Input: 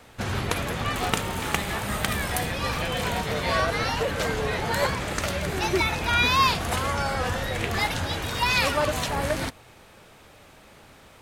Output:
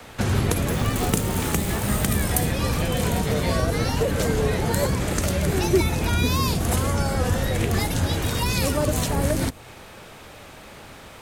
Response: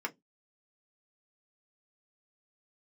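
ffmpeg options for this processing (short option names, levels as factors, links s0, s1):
-filter_complex "[0:a]acrossover=split=100|470|6300[s0][s1][s2][s3];[s2]acompressor=threshold=0.0112:ratio=5[s4];[s0][s1][s4][s3]amix=inputs=4:normalize=0,asettb=1/sr,asplit=3[s5][s6][s7];[s5]atrim=end=0.694[s8];[s6]atrim=start=0.69:end=2.09,asetpts=PTS-STARTPTS,afade=t=in:d=0.004:c=qsin,afade=t=out:st=1.396:d=0.004:c=qsin,acrusher=bits=8:dc=4:mix=0:aa=0.000001[s9];[s7]atrim=start=2.086[s10];[s8][s9]acrossfade=d=0.004:c1=hsin:c2=qsin[s11];[s11][s10]acrossfade=d=0.004:c1=qsin:c2=hsin,volume=2.51"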